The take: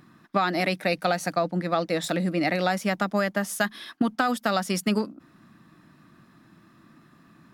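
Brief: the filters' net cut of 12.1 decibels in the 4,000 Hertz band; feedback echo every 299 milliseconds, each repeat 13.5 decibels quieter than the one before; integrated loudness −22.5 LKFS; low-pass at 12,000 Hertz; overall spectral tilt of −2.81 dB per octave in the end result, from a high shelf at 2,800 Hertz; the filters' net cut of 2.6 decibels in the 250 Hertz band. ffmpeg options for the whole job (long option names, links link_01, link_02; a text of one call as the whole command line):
ffmpeg -i in.wav -af "lowpass=12000,equalizer=frequency=250:width_type=o:gain=-3.5,highshelf=frequency=2800:gain=-8,equalizer=frequency=4000:width_type=o:gain=-9,aecho=1:1:299|598:0.211|0.0444,volume=6dB" out.wav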